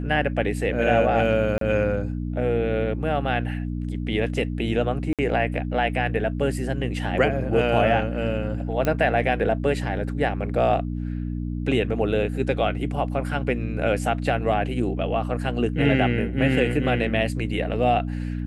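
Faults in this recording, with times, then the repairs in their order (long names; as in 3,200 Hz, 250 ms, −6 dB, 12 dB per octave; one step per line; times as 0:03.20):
mains hum 60 Hz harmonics 5 −28 dBFS
0:01.58–0:01.61: drop-out 33 ms
0:05.13–0:05.19: drop-out 57 ms
0:08.85: click −11 dBFS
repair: click removal
hum removal 60 Hz, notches 5
repair the gap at 0:01.58, 33 ms
repair the gap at 0:05.13, 57 ms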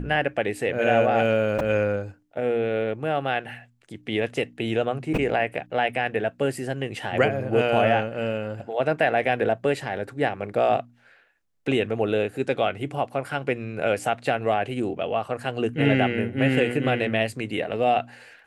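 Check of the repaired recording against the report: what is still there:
none of them is left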